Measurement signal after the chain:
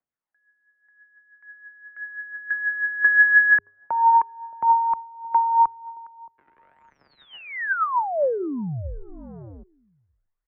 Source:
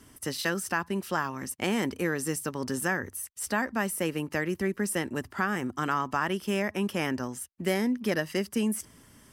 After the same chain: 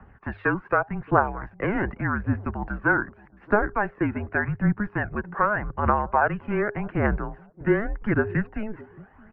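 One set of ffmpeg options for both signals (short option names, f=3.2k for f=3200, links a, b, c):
-filter_complex "[0:a]aphaser=in_gain=1:out_gain=1:delay=1.9:decay=0.51:speed=0.85:type=triangular,bandreject=f=309.4:t=h:w=4,bandreject=f=618.8:t=h:w=4,acrossover=split=250|1100[a][b][c];[a]asoftclip=type=tanh:threshold=-34.5dB[d];[b]aecho=1:1:622|1244:0.1|0.02[e];[d][e][c]amix=inputs=3:normalize=0,highpass=f=270:t=q:w=0.5412,highpass=f=270:t=q:w=1.307,lowpass=f=2.1k:t=q:w=0.5176,lowpass=f=2.1k:t=q:w=0.7071,lowpass=f=2.1k:t=q:w=1.932,afreqshift=-210,volume=6.5dB"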